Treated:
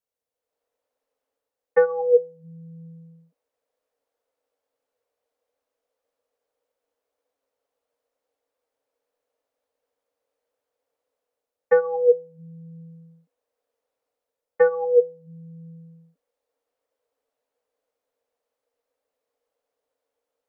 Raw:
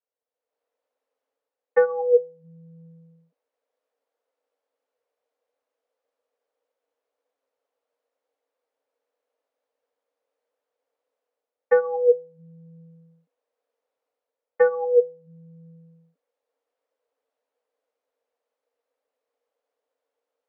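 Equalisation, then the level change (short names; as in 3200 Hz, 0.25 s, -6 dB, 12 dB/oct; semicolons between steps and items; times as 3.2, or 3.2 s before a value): tone controls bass +4 dB, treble +3 dB; low shelf 150 Hz +5.5 dB; 0.0 dB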